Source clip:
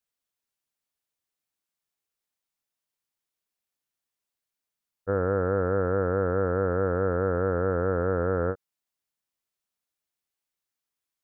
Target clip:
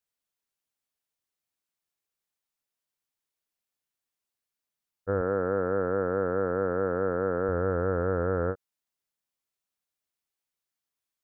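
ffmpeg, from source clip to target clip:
-filter_complex "[0:a]asettb=1/sr,asplit=3[a][b][c];[a]atrim=end=5.214[d];[b]atrim=start=5.21:end=7.49,asetpts=PTS-STARTPTS,afade=t=in:d=0.004:c=qsin,afade=t=out:st=2.276:d=0.004:c=qsin,highpass=140[e];[c]atrim=start=7.486[f];[d][e]acrossfade=d=0.004:c1=hsin:c2=qsin[g];[g][f]acrossfade=d=0.004:c1=qsin:c2=hsin,volume=-1.5dB"

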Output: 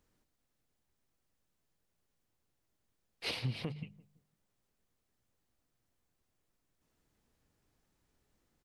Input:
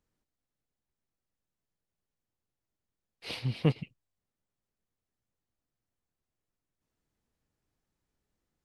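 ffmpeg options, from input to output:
-filter_complex "[0:a]bandreject=f=50:t=h:w=6,bandreject=f=100:t=h:w=6,bandreject=f=150:t=h:w=6,bandreject=f=200:t=h:w=6,acompressor=threshold=-34dB:ratio=6,alimiter=level_in=8.5dB:limit=-24dB:level=0:latency=1:release=399,volume=-8.5dB,asplit=2[a][b];[b]adelay=169,lowpass=f=980:p=1,volume=-19dB,asplit=2[c][d];[d]adelay=169,lowpass=f=980:p=1,volume=0.34,asplit=2[e][f];[f]adelay=169,lowpass=f=980:p=1,volume=0.34[g];[c][e][g]amix=inputs=3:normalize=0[h];[a][h]amix=inputs=2:normalize=0,volume=6.5dB"

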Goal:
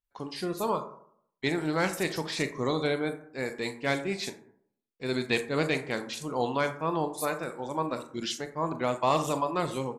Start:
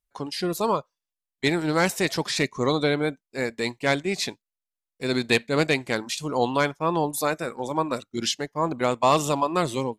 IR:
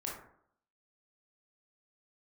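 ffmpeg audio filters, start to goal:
-filter_complex "[0:a]asettb=1/sr,asplit=3[a][b][c];[a]atrim=end=2.744[d];[b]atrim=start=2.74:end=4.1,asetpts=PTS-STARTPTS,afade=t=in:d=0.004:c=qsin,afade=t=out:st=1.356:d=0.004:c=qsin,highshelf=f=9.1k:g=5.5[e];[c]atrim=start=4.096[f];[d][e]acrossfade=d=0.004:c1=hsin:c2=qsin[g];[g][f]acrossfade=d=0.004:c1=qsin:c2=hsin,acrossover=split=5900[h][i];[i]adelay=40[j];[h][j]amix=inputs=2:normalize=0,asplit=2[k][l];[1:a]atrim=start_sample=2205[m];[l][m]afir=irnorm=-1:irlink=0,volume=-5dB[n];[k][n]amix=inputs=2:normalize=0,volume=-8.5dB"

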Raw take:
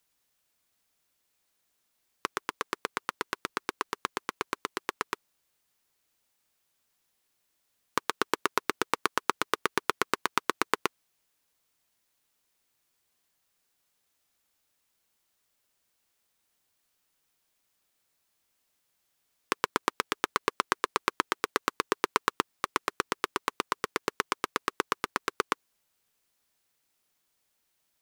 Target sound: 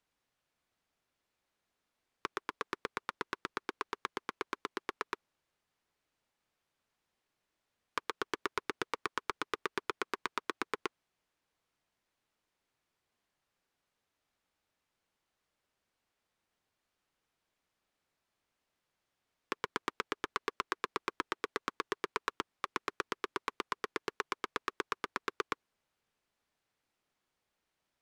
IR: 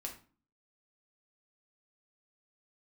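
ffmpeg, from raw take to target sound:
-filter_complex "[0:a]aemphasis=mode=reproduction:type=75fm,acrossover=split=1500[a][b];[a]asoftclip=type=hard:threshold=-27dB[c];[b]alimiter=limit=-17.5dB:level=0:latency=1[d];[c][d]amix=inputs=2:normalize=0,volume=-1.5dB"

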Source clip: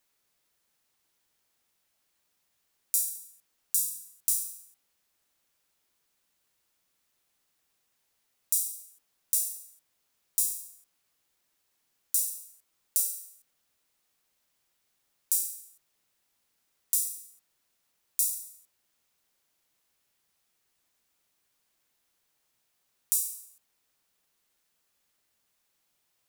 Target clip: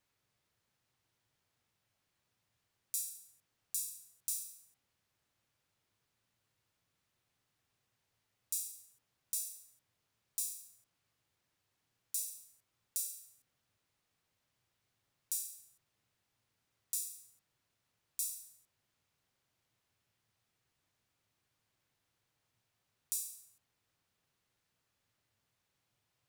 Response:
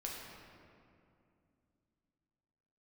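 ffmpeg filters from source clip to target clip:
-filter_complex "[0:a]highshelf=f=6.6k:g=-11,asplit=2[a][b];[b]asoftclip=type=tanh:threshold=-23dB,volume=-11dB[c];[a][c]amix=inputs=2:normalize=0,equalizer=f=110:t=o:w=0.94:g=14.5,volume=-4.5dB"

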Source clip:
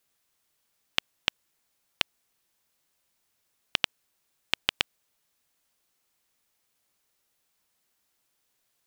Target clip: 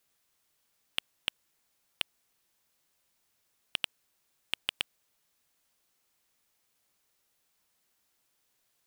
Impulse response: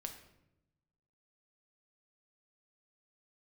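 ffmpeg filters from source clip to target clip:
-af "asoftclip=type=tanh:threshold=-12.5dB"

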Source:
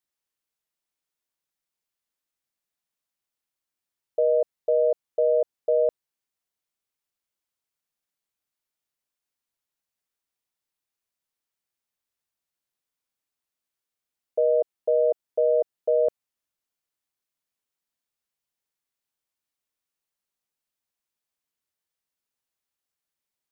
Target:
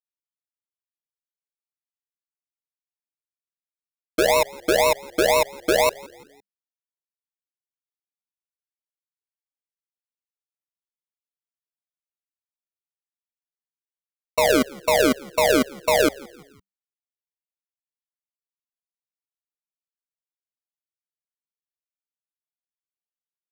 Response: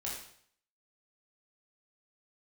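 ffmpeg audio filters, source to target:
-filter_complex "[0:a]equalizer=f=710:t=o:w=0.79:g=9,acrusher=bits=5:mix=0:aa=0.000001,acrossover=split=440[a][b];[a]aeval=exprs='(mod(33.5*val(0)+1,2)-1)/33.5':c=same[c];[c][b]amix=inputs=2:normalize=0,acrusher=samples=39:mix=1:aa=0.000001:lfo=1:lforange=23.4:lforate=2,asplit=4[d][e][f][g];[e]adelay=170,afreqshift=-66,volume=-22.5dB[h];[f]adelay=340,afreqshift=-132,volume=-29.1dB[i];[g]adelay=510,afreqshift=-198,volume=-35.6dB[j];[d][h][i][j]amix=inputs=4:normalize=0"

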